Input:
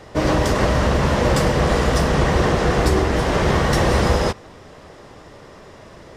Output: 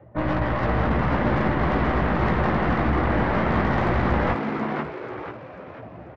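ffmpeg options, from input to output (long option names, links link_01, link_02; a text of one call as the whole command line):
ffmpeg -i in.wav -filter_complex "[0:a]highpass=frequency=63:width=0.5412,highpass=frequency=63:width=1.3066,afftdn=noise_reduction=19:noise_floor=-35,lowpass=frequency=2200:width=0.5412,lowpass=frequency=2200:width=1.3066,equalizer=frequency=440:width=4.2:gain=-14.5,aeval=exprs='0.447*(cos(1*acos(clip(val(0)/0.447,-1,1)))-cos(1*PI/2))+0.0112*(cos(2*acos(clip(val(0)/0.447,-1,1)))-cos(2*PI/2))+0.0178*(cos(3*acos(clip(val(0)/0.447,-1,1)))-cos(3*PI/2))+0.00562*(cos(7*acos(clip(val(0)/0.447,-1,1)))-cos(7*PI/2))+0.0251*(cos(8*acos(clip(val(0)/0.447,-1,1)))-cos(8*PI/2))':channel_layout=same,areverse,acompressor=threshold=-30dB:ratio=5,areverse,asplit=2[link_01][link_02];[link_02]adelay=17,volume=-5dB[link_03];[link_01][link_03]amix=inputs=2:normalize=0,asplit=2[link_04][link_05];[link_05]asplit=5[link_06][link_07][link_08][link_09][link_10];[link_06]adelay=490,afreqshift=150,volume=-5dB[link_11];[link_07]adelay=980,afreqshift=300,volume=-13.2dB[link_12];[link_08]adelay=1470,afreqshift=450,volume=-21.4dB[link_13];[link_09]adelay=1960,afreqshift=600,volume=-29.5dB[link_14];[link_10]adelay=2450,afreqshift=750,volume=-37.7dB[link_15];[link_11][link_12][link_13][link_14][link_15]amix=inputs=5:normalize=0[link_16];[link_04][link_16]amix=inputs=2:normalize=0,volume=8dB" out.wav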